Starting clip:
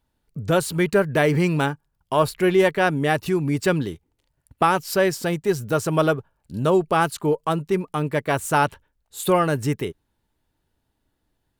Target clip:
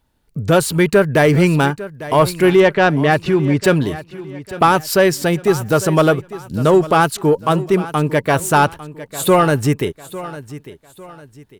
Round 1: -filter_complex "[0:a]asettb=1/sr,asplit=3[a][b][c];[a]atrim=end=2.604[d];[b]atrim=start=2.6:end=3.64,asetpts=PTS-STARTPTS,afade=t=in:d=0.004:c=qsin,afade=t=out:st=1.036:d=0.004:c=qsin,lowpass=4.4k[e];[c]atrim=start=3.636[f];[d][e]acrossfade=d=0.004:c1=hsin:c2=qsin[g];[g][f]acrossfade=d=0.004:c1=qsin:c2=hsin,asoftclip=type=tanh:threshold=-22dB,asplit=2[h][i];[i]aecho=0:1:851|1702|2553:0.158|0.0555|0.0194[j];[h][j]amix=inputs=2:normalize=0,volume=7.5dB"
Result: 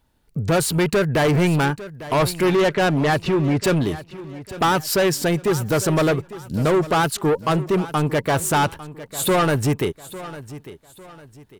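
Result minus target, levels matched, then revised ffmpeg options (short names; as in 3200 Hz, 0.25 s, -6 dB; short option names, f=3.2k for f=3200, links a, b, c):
soft clip: distortion +13 dB
-filter_complex "[0:a]asettb=1/sr,asplit=3[a][b][c];[a]atrim=end=2.604[d];[b]atrim=start=2.6:end=3.64,asetpts=PTS-STARTPTS,afade=t=in:d=0.004:c=qsin,afade=t=out:st=1.036:d=0.004:c=qsin,lowpass=4.4k[e];[c]atrim=start=3.636[f];[d][e]acrossfade=d=0.004:c1=hsin:c2=qsin[g];[g][f]acrossfade=d=0.004:c1=qsin:c2=hsin,asoftclip=type=tanh:threshold=-10dB,asplit=2[h][i];[i]aecho=0:1:851|1702|2553:0.158|0.0555|0.0194[j];[h][j]amix=inputs=2:normalize=0,volume=7.5dB"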